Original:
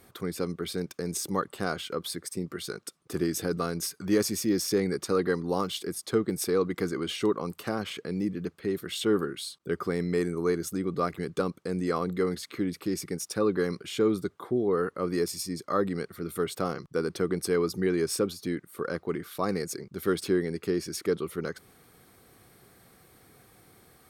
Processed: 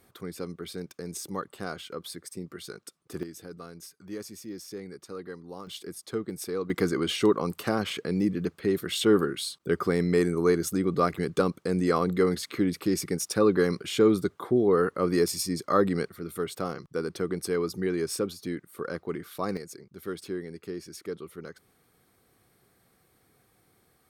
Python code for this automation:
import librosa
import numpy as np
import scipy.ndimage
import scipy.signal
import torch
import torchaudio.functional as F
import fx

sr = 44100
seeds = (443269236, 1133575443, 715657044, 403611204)

y = fx.gain(x, sr, db=fx.steps((0.0, -5.0), (3.23, -13.5), (5.67, -6.0), (6.7, 4.0), (16.09, -2.0), (19.57, -8.5)))